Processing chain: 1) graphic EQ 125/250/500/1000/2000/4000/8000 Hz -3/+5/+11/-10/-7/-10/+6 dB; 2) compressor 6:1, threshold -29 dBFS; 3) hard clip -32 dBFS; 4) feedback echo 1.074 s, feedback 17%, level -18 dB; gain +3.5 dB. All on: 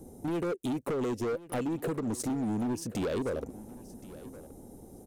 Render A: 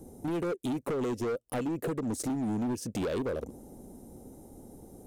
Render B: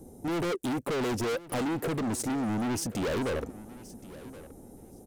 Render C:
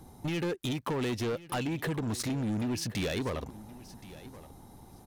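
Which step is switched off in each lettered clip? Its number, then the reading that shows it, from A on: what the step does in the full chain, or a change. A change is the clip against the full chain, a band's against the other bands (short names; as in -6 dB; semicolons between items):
4, momentary loudness spread change +3 LU; 2, mean gain reduction 9.0 dB; 1, 4 kHz band +8.0 dB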